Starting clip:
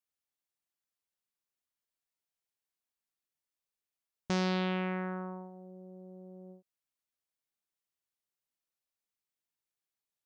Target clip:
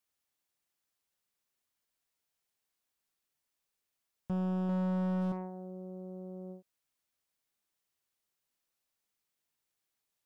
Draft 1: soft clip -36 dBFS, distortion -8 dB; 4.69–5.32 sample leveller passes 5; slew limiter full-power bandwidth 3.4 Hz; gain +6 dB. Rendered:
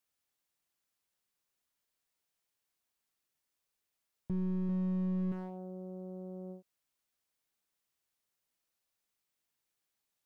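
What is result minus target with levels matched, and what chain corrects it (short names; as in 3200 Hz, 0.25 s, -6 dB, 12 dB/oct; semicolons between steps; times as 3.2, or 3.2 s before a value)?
slew limiter: distortion +8 dB
soft clip -36 dBFS, distortion -8 dB; 4.69–5.32 sample leveller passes 5; slew limiter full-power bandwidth 10.5 Hz; gain +6 dB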